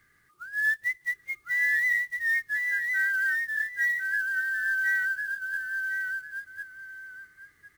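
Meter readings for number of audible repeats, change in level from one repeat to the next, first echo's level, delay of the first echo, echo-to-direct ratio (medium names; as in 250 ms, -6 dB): 2, -12.5 dB, -3.5 dB, 1055 ms, -3.5 dB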